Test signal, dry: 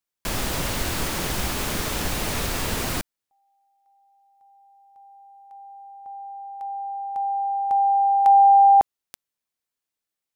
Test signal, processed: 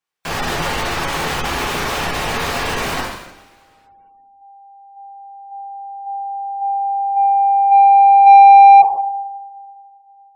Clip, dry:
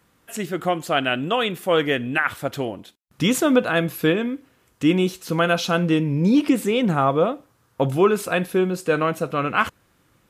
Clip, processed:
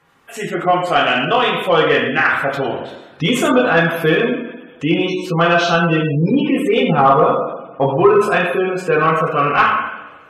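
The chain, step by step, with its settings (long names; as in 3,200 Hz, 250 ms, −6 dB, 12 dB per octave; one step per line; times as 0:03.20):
coupled-rooms reverb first 0.87 s, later 2.9 s, from −24 dB, DRR −4.5 dB
gate on every frequency bin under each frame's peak −30 dB strong
mid-hump overdrive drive 11 dB, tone 2,000 Hz, clips at 0 dBFS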